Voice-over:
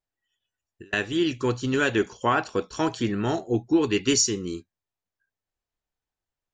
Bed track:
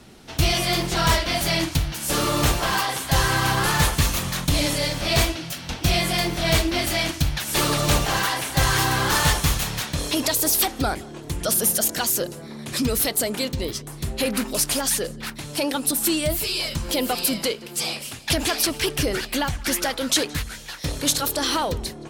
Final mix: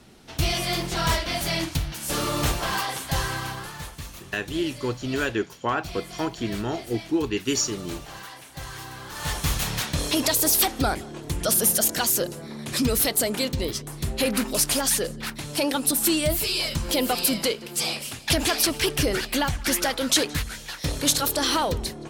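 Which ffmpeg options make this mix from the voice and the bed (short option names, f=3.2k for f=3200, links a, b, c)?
-filter_complex "[0:a]adelay=3400,volume=-3dB[a];[1:a]volume=13.5dB,afade=t=out:st=2.98:d=0.73:silence=0.211349,afade=t=in:st=9.15:d=0.57:silence=0.133352[b];[a][b]amix=inputs=2:normalize=0"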